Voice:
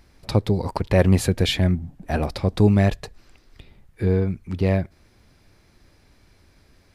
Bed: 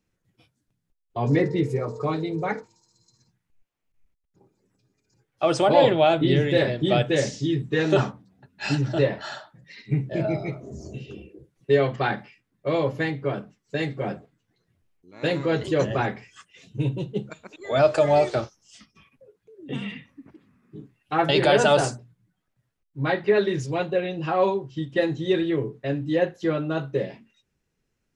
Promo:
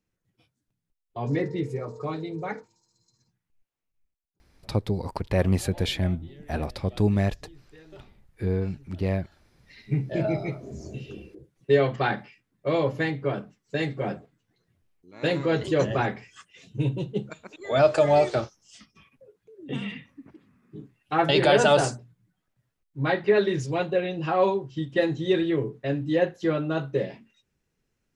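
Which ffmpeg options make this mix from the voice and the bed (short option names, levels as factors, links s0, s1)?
-filter_complex "[0:a]adelay=4400,volume=0.501[s0];[1:a]volume=13.3,afade=t=out:st=3.74:d=0.7:silence=0.0707946,afade=t=in:st=9.45:d=0.58:silence=0.0398107[s1];[s0][s1]amix=inputs=2:normalize=0"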